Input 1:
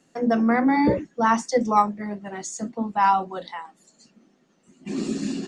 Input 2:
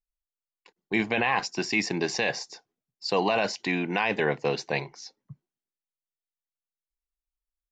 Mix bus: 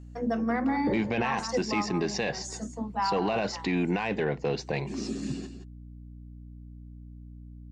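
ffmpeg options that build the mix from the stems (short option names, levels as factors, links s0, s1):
-filter_complex "[0:a]volume=0.447,asplit=2[s0][s1];[s1]volume=0.299[s2];[1:a]lowshelf=f=480:g=9.5,aeval=exprs='val(0)+0.00708*(sin(2*PI*60*n/s)+sin(2*PI*2*60*n/s)/2+sin(2*PI*3*60*n/s)/3+sin(2*PI*4*60*n/s)/4+sin(2*PI*5*60*n/s)/5)':c=same,volume=0.944[s3];[s2]aecho=0:1:172:1[s4];[s0][s3][s4]amix=inputs=3:normalize=0,asoftclip=type=tanh:threshold=0.282,alimiter=limit=0.112:level=0:latency=1:release=176"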